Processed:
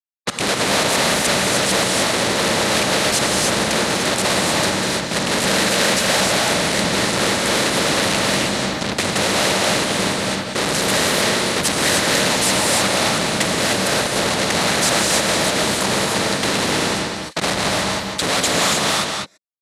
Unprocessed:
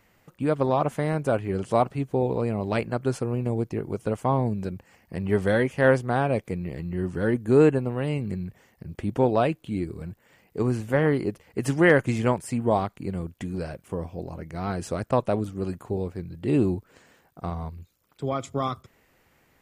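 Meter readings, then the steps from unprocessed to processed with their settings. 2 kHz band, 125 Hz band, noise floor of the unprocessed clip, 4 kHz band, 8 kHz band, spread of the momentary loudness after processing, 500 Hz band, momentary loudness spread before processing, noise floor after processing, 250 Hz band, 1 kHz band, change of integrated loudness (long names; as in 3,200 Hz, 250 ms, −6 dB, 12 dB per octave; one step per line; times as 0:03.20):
+14.0 dB, 0.0 dB, −64 dBFS, +29.0 dB, +29.0 dB, 4 LU, +4.0 dB, 14 LU, −27 dBFS, +3.5 dB, +10.0 dB, +9.0 dB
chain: reverb reduction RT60 1.1 s
random phases in short frames
in parallel at +2.5 dB: downward compressor, threshold −34 dBFS, peak gain reduction 19.5 dB
on the sum: fuzz pedal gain 44 dB, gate −43 dBFS
on a send: single-tap delay 197 ms −13.5 dB
on the sum: soft clipping −16 dBFS, distortion −17 dB
loudspeaker in its box 160–9,800 Hz, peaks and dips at 190 Hz +5 dB, 570 Hz +7 dB, 1,900 Hz +5 dB, 4,000 Hz +10 dB
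reverb whose tail is shaped and stops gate 330 ms rising, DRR −1.5 dB
every bin compressed towards the loudest bin 2 to 1
level −4 dB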